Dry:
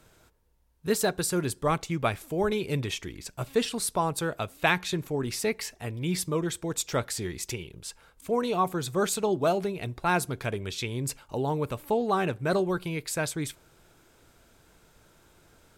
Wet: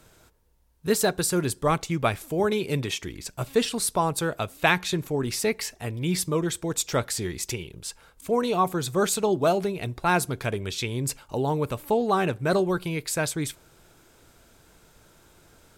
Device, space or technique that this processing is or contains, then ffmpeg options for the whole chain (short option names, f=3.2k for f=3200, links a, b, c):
exciter from parts: -filter_complex "[0:a]asettb=1/sr,asplit=3[a][b][c];[a]atrim=end=2.404[d];[b]atrim=start=2.4:end=3.02,asetpts=PTS-STARTPTS,afade=t=in:d=0.004:c=qsin,afade=t=out:st=0.616:d=0.004:c=qsin,highpass=110[e];[c]atrim=start=3.016[f];[d][e]acrossfade=d=0.004:c1=hsin:c2=qsin[g];[g][f]acrossfade=d=0.004:c1=qsin:c2=hsin,asplit=2[h][i];[i]highpass=3.1k,asoftclip=type=tanh:threshold=-34.5dB,volume=-12.5dB[j];[h][j]amix=inputs=2:normalize=0,volume=3dB"